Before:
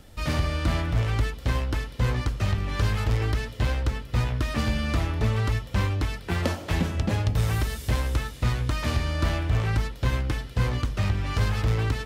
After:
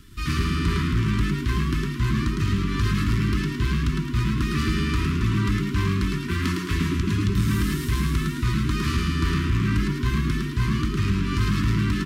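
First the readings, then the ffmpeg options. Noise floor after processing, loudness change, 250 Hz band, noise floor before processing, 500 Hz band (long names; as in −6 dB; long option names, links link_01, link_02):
−30 dBFS, +2.5 dB, +8.0 dB, −41 dBFS, −1.5 dB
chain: -filter_complex "[0:a]asplit=7[link_01][link_02][link_03][link_04][link_05][link_06][link_07];[link_02]adelay=108,afreqshift=93,volume=-4dB[link_08];[link_03]adelay=216,afreqshift=186,volume=-10.7dB[link_09];[link_04]adelay=324,afreqshift=279,volume=-17.5dB[link_10];[link_05]adelay=432,afreqshift=372,volume=-24.2dB[link_11];[link_06]adelay=540,afreqshift=465,volume=-31dB[link_12];[link_07]adelay=648,afreqshift=558,volume=-37.7dB[link_13];[link_01][link_08][link_09][link_10][link_11][link_12][link_13]amix=inputs=7:normalize=0,asoftclip=type=tanh:threshold=-13dB,afftfilt=real='re*(1-between(b*sr/4096,410,960))':imag='im*(1-between(b*sr/4096,410,960))':win_size=4096:overlap=0.75,volume=1.5dB"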